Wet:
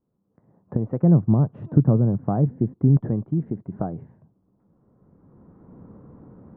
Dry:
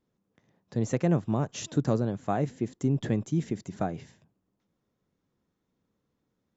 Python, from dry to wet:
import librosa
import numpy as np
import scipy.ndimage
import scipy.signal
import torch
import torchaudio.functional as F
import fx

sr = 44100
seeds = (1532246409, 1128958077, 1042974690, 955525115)

y = fx.recorder_agc(x, sr, target_db=-17.5, rise_db_per_s=16.0, max_gain_db=30)
y = fx.peak_eq(y, sr, hz=130.0, db=fx.steps((0.0, 3.5), (1.03, 12.5), (2.97, 5.0)), octaves=2.3)
y = scipy.signal.sosfilt(scipy.signal.butter(4, 1200.0, 'lowpass', fs=sr, output='sos'), y)
y = y * 10.0 ** (-1.0 / 20.0)